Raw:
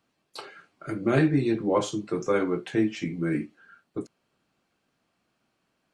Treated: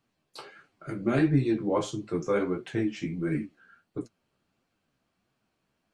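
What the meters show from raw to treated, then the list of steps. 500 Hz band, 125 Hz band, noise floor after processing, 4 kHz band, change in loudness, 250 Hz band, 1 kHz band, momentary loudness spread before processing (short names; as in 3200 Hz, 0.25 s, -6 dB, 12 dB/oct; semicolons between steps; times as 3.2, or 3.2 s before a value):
-3.0 dB, -0.5 dB, -79 dBFS, -4.0 dB, -2.0 dB, -2.0 dB, -3.5 dB, 20 LU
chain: low shelf 110 Hz +9.5 dB; flange 1.5 Hz, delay 6.6 ms, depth 9.6 ms, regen +30%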